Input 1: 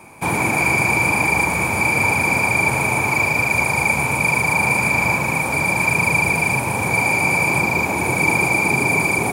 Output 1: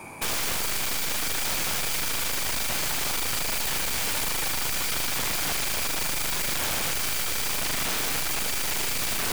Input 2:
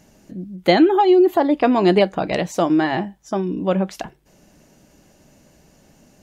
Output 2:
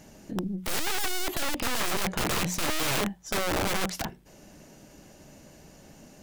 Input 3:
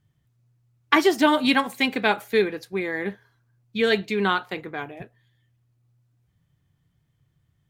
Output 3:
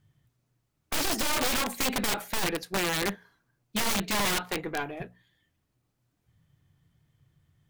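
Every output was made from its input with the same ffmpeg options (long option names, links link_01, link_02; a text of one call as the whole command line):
ffmpeg -i in.wav -af "bandreject=frequency=60:width_type=h:width=6,bandreject=frequency=120:width_type=h:width=6,bandreject=frequency=180:width_type=h:width=6,bandreject=frequency=240:width_type=h:width=6,aeval=exprs='(tanh(15.8*val(0)+0.5)-tanh(0.5))/15.8':channel_layout=same,aeval=exprs='(mod(17.8*val(0)+1,2)-1)/17.8':channel_layout=same,volume=4dB" out.wav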